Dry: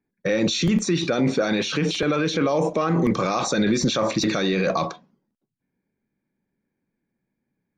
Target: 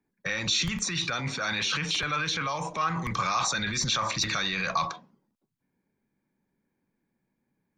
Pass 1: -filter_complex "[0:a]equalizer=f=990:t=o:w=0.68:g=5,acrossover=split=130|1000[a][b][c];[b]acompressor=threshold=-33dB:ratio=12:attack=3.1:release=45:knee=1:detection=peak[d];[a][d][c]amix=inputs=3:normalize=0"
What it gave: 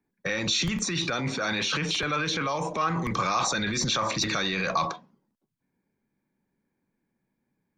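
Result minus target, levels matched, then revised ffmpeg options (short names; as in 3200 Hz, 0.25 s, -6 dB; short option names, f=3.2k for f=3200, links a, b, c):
compressor: peak gain reduction -10.5 dB
-filter_complex "[0:a]equalizer=f=990:t=o:w=0.68:g=5,acrossover=split=130|1000[a][b][c];[b]acompressor=threshold=-44.5dB:ratio=12:attack=3.1:release=45:knee=1:detection=peak[d];[a][d][c]amix=inputs=3:normalize=0"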